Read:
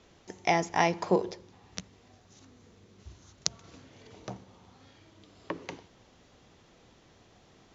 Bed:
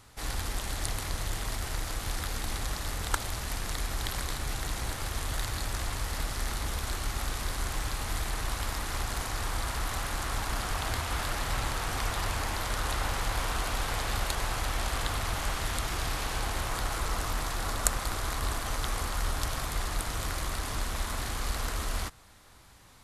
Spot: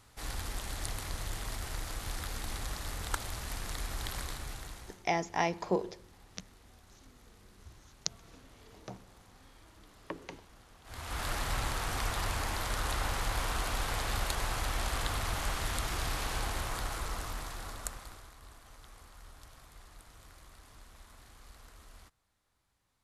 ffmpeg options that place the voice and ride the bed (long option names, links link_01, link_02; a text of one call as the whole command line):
ffmpeg -i stem1.wav -i stem2.wav -filter_complex "[0:a]adelay=4600,volume=-5dB[link_01];[1:a]volume=20dB,afade=type=out:start_time=4.19:duration=0.85:silence=0.0749894,afade=type=in:start_time=10.84:duration=0.46:silence=0.0562341,afade=type=out:start_time=16.36:duration=1.96:silence=0.1[link_02];[link_01][link_02]amix=inputs=2:normalize=0" out.wav